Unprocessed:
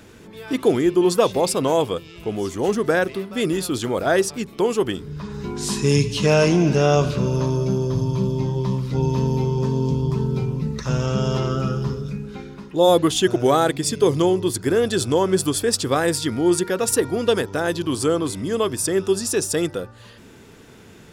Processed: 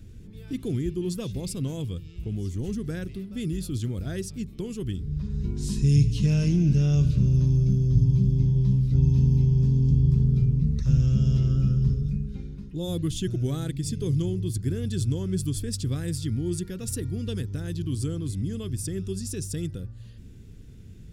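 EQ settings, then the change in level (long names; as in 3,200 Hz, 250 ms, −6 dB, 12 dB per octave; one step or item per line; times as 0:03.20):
dynamic equaliser 600 Hz, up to −6 dB, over −29 dBFS, Q 0.73
guitar amp tone stack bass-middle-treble 10-0-1
low-shelf EQ 180 Hz +10 dB
+9.0 dB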